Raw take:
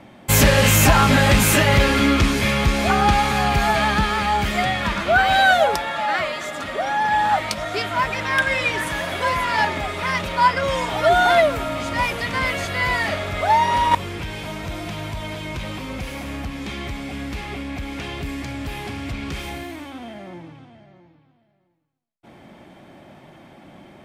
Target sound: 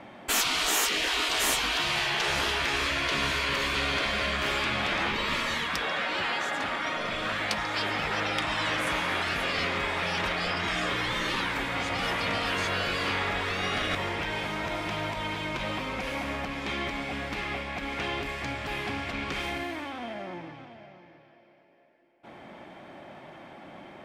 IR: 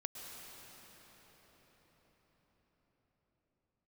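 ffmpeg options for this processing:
-filter_complex "[0:a]asplit=2[link_01][link_02];[link_02]highpass=frequency=720:poles=1,volume=10dB,asoftclip=type=tanh:threshold=-3dB[link_03];[link_01][link_03]amix=inputs=2:normalize=0,lowpass=frequency=2200:poles=1,volume=-6dB,asplit=2[link_04][link_05];[link_05]highpass=450,equalizer=frequency=540:width_type=q:width=4:gain=4,equalizer=frequency=760:width_type=q:width=4:gain=-6,equalizer=frequency=1200:width_type=q:width=4:gain=-9,equalizer=frequency=1800:width_type=q:width=4:gain=3,equalizer=frequency=3700:width_type=q:width=4:gain=-4,equalizer=frequency=5400:width_type=q:width=4:gain=7,lowpass=frequency=5500:width=0.5412,lowpass=frequency=5500:width=1.3066[link_06];[1:a]atrim=start_sample=2205,adelay=140[link_07];[link_06][link_07]afir=irnorm=-1:irlink=0,volume=-10.5dB[link_08];[link_04][link_08]amix=inputs=2:normalize=0,afftfilt=real='re*lt(hypot(re,im),0.224)':imag='im*lt(hypot(re,im),0.224)':win_size=1024:overlap=0.75,volume=-2dB"

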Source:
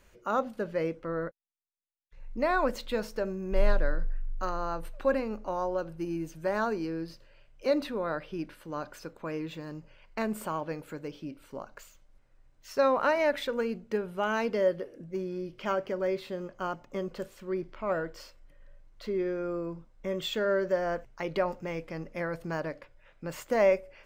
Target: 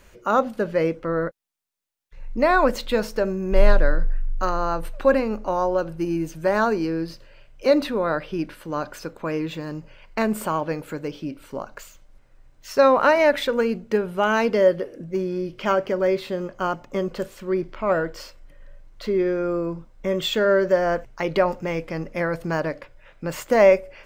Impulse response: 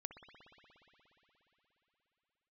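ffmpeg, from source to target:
-af "volume=9dB"

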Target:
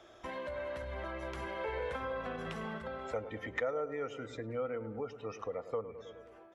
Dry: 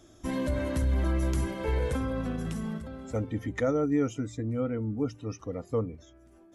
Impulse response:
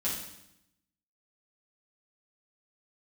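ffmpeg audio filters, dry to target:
-filter_complex "[0:a]acrossover=split=380 3700:gain=0.126 1 0.0891[link_01][link_02][link_03];[link_01][link_02][link_03]amix=inputs=3:normalize=0,asplit=2[link_04][link_05];[link_05]adelay=104,lowpass=frequency=1600:poles=1,volume=-13.5dB,asplit=2[link_06][link_07];[link_07]adelay=104,lowpass=frequency=1600:poles=1,volume=0.55,asplit=2[link_08][link_09];[link_09]adelay=104,lowpass=frequency=1600:poles=1,volume=0.55,asplit=2[link_10][link_11];[link_11]adelay=104,lowpass=frequency=1600:poles=1,volume=0.55,asplit=2[link_12][link_13];[link_13]adelay=104,lowpass=frequency=1600:poles=1,volume=0.55,asplit=2[link_14][link_15];[link_15]adelay=104,lowpass=frequency=1600:poles=1,volume=0.55[link_16];[link_04][link_06][link_08][link_10][link_12][link_14][link_16]amix=inputs=7:normalize=0,acompressor=threshold=-49dB:ratio=2.5,equalizer=frequency=290:width_type=o:width=0.39:gain=-10.5,dynaudnorm=framelen=600:gausssize=5:maxgain=4dB,volume=6.5dB"

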